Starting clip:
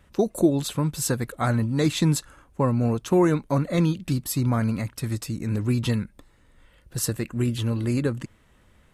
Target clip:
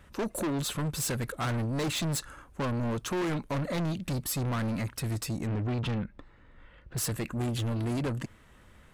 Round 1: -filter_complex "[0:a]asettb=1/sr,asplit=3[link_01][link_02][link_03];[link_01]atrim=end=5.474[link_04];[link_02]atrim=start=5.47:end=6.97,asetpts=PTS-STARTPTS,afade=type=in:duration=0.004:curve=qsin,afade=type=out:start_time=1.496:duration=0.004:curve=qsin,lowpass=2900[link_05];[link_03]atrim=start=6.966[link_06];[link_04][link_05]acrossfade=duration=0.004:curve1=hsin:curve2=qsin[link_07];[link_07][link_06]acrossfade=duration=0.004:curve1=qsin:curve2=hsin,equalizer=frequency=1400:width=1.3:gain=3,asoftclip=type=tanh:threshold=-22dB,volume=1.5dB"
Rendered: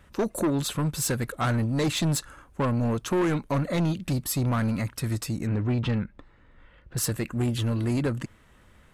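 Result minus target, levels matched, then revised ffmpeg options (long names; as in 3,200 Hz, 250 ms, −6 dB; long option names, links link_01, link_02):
soft clipping: distortion −4 dB
-filter_complex "[0:a]asettb=1/sr,asplit=3[link_01][link_02][link_03];[link_01]atrim=end=5.474[link_04];[link_02]atrim=start=5.47:end=6.97,asetpts=PTS-STARTPTS,afade=type=in:duration=0.004:curve=qsin,afade=type=out:start_time=1.496:duration=0.004:curve=qsin,lowpass=2900[link_05];[link_03]atrim=start=6.966[link_06];[link_04][link_05]acrossfade=duration=0.004:curve1=hsin:curve2=qsin[link_07];[link_07][link_06]acrossfade=duration=0.004:curve1=qsin:curve2=hsin,equalizer=frequency=1400:width=1.3:gain=3,asoftclip=type=tanh:threshold=-29.5dB,volume=1.5dB"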